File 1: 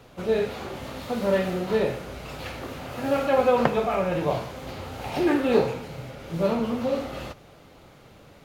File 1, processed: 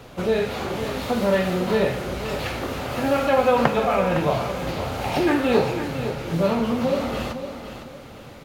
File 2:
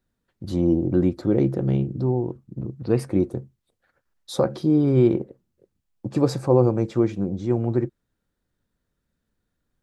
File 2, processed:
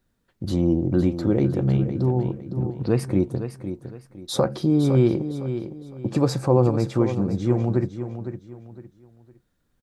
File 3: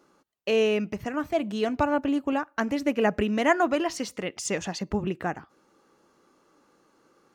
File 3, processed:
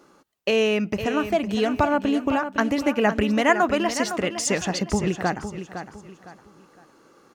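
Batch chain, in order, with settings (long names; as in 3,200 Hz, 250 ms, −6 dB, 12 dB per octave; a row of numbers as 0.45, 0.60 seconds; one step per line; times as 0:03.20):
dynamic equaliser 380 Hz, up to −4 dB, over −28 dBFS, Q 0.93
in parallel at −3 dB: downward compressor, threshold −30 dBFS
on the sum: repeating echo 509 ms, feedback 31%, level −10 dB
loudness normalisation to −23 LKFS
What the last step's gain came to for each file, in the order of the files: +2.5, +0.5, +2.5 decibels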